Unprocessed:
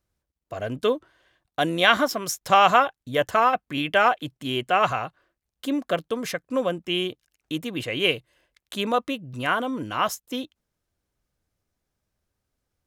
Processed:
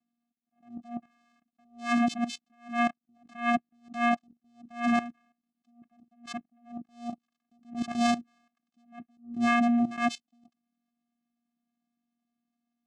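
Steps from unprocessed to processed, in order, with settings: vocoder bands 4, square 237 Hz; level quantiser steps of 15 dB; attack slew limiter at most 170 dB/s; gain +7 dB

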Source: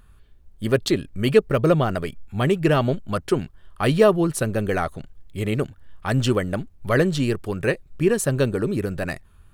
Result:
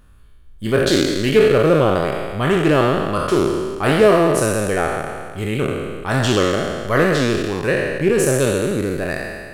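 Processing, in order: spectral trails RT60 1.78 s; Doppler distortion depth 0.1 ms

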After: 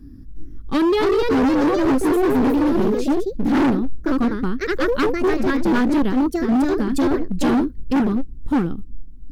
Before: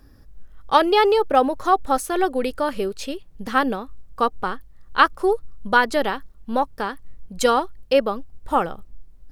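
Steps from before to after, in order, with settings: resonant low shelf 410 Hz +13.5 dB, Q 3; echoes that change speed 0.362 s, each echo +2 st, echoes 3; hard clip -9.5 dBFS, distortion -7 dB; gain -5 dB

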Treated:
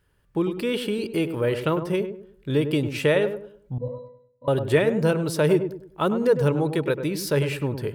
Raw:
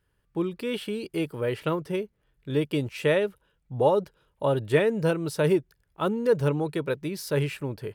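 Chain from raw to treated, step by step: in parallel at 0 dB: compressor, threshold -29 dBFS, peak gain reduction 13 dB; 3.78–4.48 on the sum: octave resonator B, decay 0.36 s; darkening echo 0.101 s, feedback 36%, low-pass 1100 Hz, level -8 dB

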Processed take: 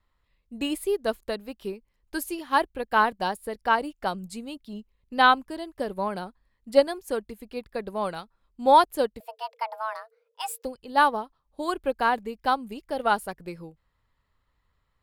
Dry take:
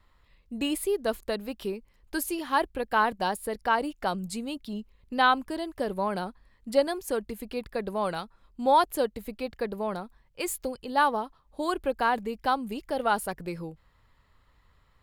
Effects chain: 9.2–10.65 frequency shift +440 Hz; upward expander 1.5:1, over -46 dBFS; gain +5 dB

